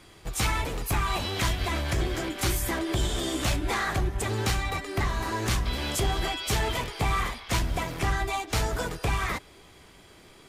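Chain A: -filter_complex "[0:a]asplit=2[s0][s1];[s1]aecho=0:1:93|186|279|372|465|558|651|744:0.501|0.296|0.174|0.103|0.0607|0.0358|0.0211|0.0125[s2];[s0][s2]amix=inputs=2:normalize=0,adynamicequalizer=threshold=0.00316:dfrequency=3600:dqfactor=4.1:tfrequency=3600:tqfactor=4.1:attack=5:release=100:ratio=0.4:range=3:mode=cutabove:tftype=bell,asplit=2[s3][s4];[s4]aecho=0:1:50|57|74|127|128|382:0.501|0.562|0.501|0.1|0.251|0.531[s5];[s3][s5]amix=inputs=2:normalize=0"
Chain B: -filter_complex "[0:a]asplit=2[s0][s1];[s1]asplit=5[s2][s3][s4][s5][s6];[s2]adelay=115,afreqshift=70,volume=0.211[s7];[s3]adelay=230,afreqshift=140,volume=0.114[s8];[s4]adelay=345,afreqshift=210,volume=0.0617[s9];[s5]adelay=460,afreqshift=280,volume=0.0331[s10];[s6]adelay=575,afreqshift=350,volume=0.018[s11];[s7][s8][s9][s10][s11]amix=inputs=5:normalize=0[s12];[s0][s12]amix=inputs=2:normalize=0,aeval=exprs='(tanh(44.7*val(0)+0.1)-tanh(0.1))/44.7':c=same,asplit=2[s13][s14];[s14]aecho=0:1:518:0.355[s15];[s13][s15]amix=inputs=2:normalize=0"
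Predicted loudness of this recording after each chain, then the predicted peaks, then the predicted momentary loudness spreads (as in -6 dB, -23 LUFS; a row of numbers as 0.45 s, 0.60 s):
-24.0 LUFS, -35.5 LUFS; -10.0 dBFS, -29.5 dBFS; 3 LU, 2 LU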